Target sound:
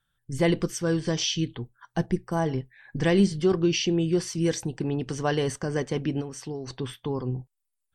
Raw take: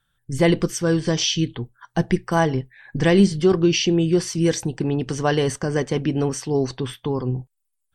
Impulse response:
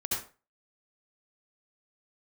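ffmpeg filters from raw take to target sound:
-filter_complex "[0:a]asettb=1/sr,asplit=3[link_01][link_02][link_03];[link_01]atrim=end=2.064[link_04];[link_02]atrim=start=2.06:end=2.46,asetpts=PTS-STARTPTS,afade=type=in:duration=0.004:curve=qsin,afade=type=out:start_time=0.396:duration=0.004:curve=qsin,equalizer=frequency=2600:width=0.5:gain=-9[link_05];[link_03]atrim=start=2.456[link_06];[link_04][link_05]acrossfade=duration=0.004:curve1=hsin:curve2=qsin[link_07];[link_07][link_06]acrossfade=duration=0.004:curve1=qsin:curve2=hsin,asplit=3[link_08][link_09][link_10];[link_08]afade=type=out:start_time=6.2:duration=0.02[link_11];[link_09]acompressor=threshold=-25dB:ratio=12,afade=type=in:start_time=6.2:duration=0.02,afade=type=out:start_time=6.66:duration=0.02[link_12];[link_10]afade=type=in:start_time=6.66:duration=0.02[link_13];[link_11][link_12][link_13]amix=inputs=3:normalize=0,volume=-5.5dB"

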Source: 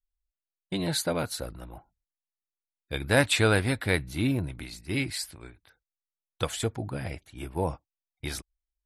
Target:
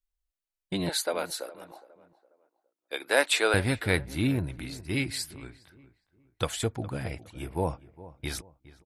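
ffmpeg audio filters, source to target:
ffmpeg -i in.wav -filter_complex "[0:a]asettb=1/sr,asplit=3[link_01][link_02][link_03];[link_01]atrim=end=0.894[link_04];[link_02]atrim=start=0.89:end=3.54,asetpts=PTS-STARTPTS,afade=type=in:duration=0.004:curve=qsin,afade=type=out:start_time=2.646:duration=0.004:curve=qsin,highpass=frequency=370:width=0.5412,highpass=frequency=370:width=1.3066[link_05];[link_03]atrim=start=3.536[link_06];[link_04][link_05]acrossfade=duration=0.004:curve1=hsin:curve2=qsin[link_07];[link_07][link_06]acrossfade=duration=0.004:curve1=qsin:curve2=hsin,asplit=2[link_08][link_09];[link_09]adelay=412,lowpass=frequency=1600:poles=1,volume=-17.5dB,asplit=2[link_10][link_11];[link_11]adelay=412,lowpass=frequency=1600:poles=1,volume=0.36,asplit=2[link_12][link_13];[link_13]adelay=412,lowpass=frequency=1600:poles=1,volume=0.36[link_14];[link_08][link_10][link_12][link_14]amix=inputs=4:normalize=0" out.wav

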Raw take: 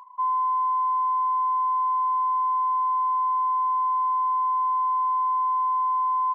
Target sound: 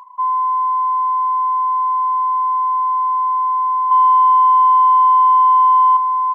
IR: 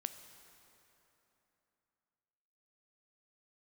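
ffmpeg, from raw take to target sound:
-filter_complex "[0:a]asettb=1/sr,asplit=3[link_01][link_02][link_03];[link_01]atrim=end=3.914[link_04];[link_02]atrim=start=3.91:end=5.97,asetpts=PTS-STARTPTS,afade=type=in:duration=0.004:curve=qsin,afade=type=out:start_time=2.056:duration=0.004:curve=qsin,acontrast=58[link_05];[link_03]atrim=start=5.966[link_06];[link_04][link_05]acrossfade=duration=0.004:curve1=hsin:curve2=qsin[link_07];[link_07][link_06]acrossfade=duration=0.004:curve1=qsin:curve2=hsin,volume=6.5dB"

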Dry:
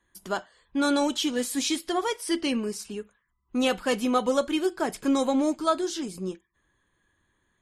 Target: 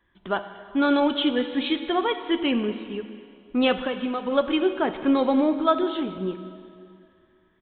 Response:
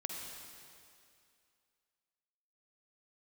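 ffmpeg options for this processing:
-filter_complex "[0:a]asplit=3[link_01][link_02][link_03];[link_01]afade=type=out:start_time=3.86:duration=0.02[link_04];[link_02]acompressor=threshold=-29dB:ratio=6,afade=type=in:start_time=3.86:duration=0.02,afade=type=out:start_time=4.31:duration=0.02[link_05];[link_03]afade=type=in:start_time=4.31:duration=0.02[link_06];[link_04][link_05][link_06]amix=inputs=3:normalize=0,asplit=2[link_07][link_08];[1:a]atrim=start_sample=2205[link_09];[link_08][link_09]afir=irnorm=-1:irlink=0,volume=-4dB[link_10];[link_07][link_10]amix=inputs=2:normalize=0,aresample=8000,aresample=44100"

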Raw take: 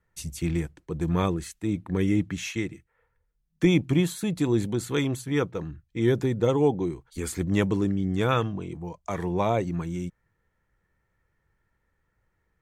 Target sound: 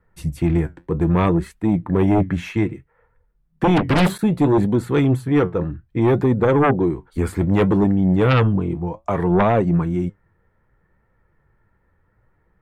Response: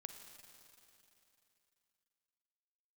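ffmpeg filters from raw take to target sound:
-filter_complex "[0:a]flanger=delay=3.7:depth=8.2:regen=68:speed=0.63:shape=triangular,acrossover=split=1800[link_01][link_02];[link_01]aeval=exprs='0.237*sin(PI/2*3.16*val(0)/0.237)':channel_layout=same[link_03];[link_03][link_02]amix=inputs=2:normalize=0,asplit=3[link_04][link_05][link_06];[link_04]afade=type=out:start_time=3.76:duration=0.02[link_07];[link_05]aeval=exprs='0.282*(cos(1*acos(clip(val(0)/0.282,-1,1)))-cos(1*PI/2))+0.0562*(cos(3*acos(clip(val(0)/0.282,-1,1)))-cos(3*PI/2))+0.112*(cos(7*acos(clip(val(0)/0.282,-1,1)))-cos(7*PI/2))':channel_layout=same,afade=type=in:start_time=3.76:duration=0.02,afade=type=out:start_time=4.17:duration=0.02[link_08];[link_06]afade=type=in:start_time=4.17:duration=0.02[link_09];[link_07][link_08][link_09]amix=inputs=3:normalize=0,equalizer=frequency=6500:width=2.4:gain=-7.5,volume=1.5dB"

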